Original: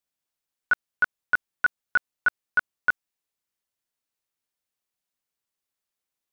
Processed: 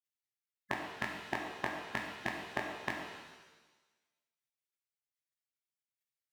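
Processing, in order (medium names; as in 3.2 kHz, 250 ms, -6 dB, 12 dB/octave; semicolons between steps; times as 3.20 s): graphic EQ 125/250/500/1000/2000 Hz -8/+11/+11/+6/-5 dB; spectral gate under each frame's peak -25 dB weak; compression, threshold -41 dBFS, peak gain reduction 9 dB; high-pass 78 Hz 12 dB/octave; pitch-shifted reverb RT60 1.2 s, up +7 st, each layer -8 dB, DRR 0.5 dB; trim +8.5 dB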